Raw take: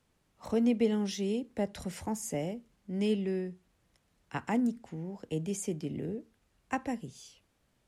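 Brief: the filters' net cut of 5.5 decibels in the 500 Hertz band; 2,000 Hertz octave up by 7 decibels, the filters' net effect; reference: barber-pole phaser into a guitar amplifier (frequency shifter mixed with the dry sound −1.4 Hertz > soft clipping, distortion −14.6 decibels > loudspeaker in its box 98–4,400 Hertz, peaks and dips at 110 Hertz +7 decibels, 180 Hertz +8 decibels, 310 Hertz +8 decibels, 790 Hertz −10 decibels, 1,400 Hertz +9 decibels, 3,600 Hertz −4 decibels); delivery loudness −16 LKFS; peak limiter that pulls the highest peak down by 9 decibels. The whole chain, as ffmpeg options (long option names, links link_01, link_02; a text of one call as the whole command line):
ffmpeg -i in.wav -filter_complex "[0:a]equalizer=frequency=500:width_type=o:gain=-8.5,equalizer=frequency=2000:width_type=o:gain=6.5,alimiter=level_in=2.5dB:limit=-24dB:level=0:latency=1,volume=-2.5dB,asplit=2[link_01][link_02];[link_02]afreqshift=-1.4[link_03];[link_01][link_03]amix=inputs=2:normalize=1,asoftclip=threshold=-33.5dB,highpass=98,equalizer=frequency=110:width_type=q:width=4:gain=7,equalizer=frequency=180:width_type=q:width=4:gain=8,equalizer=frequency=310:width_type=q:width=4:gain=8,equalizer=frequency=790:width_type=q:width=4:gain=-10,equalizer=frequency=1400:width_type=q:width=4:gain=9,equalizer=frequency=3600:width_type=q:width=4:gain=-4,lowpass=frequency=4400:width=0.5412,lowpass=frequency=4400:width=1.3066,volume=22.5dB" out.wav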